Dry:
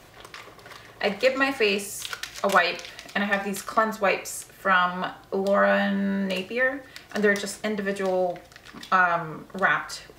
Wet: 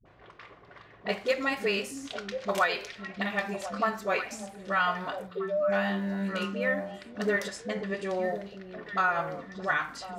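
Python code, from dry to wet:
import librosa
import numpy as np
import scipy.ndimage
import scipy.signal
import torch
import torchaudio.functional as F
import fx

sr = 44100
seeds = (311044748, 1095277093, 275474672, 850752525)

y = fx.spec_expand(x, sr, power=3.9, at=(5.21, 5.66), fade=0.02)
y = fx.lowpass(y, sr, hz=8800.0, slope=12, at=(7.42, 8.18))
y = fx.dispersion(y, sr, late='highs', ms=56.0, hz=340.0)
y = fx.env_lowpass(y, sr, base_hz=1900.0, full_db=-22.0)
y = fx.echo_stepped(y, sr, ms=526, hz=230.0, octaves=1.4, feedback_pct=70, wet_db=-5.0)
y = F.gain(torch.from_numpy(y), -6.0).numpy()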